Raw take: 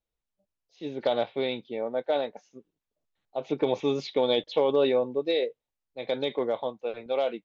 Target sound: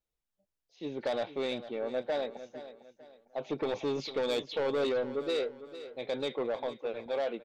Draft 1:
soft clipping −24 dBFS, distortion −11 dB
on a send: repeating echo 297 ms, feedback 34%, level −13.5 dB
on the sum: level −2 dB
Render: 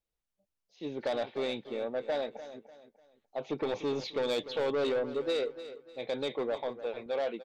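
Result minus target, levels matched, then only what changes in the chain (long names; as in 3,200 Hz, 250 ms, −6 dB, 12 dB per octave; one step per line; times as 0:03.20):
echo 156 ms early
change: repeating echo 453 ms, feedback 34%, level −13.5 dB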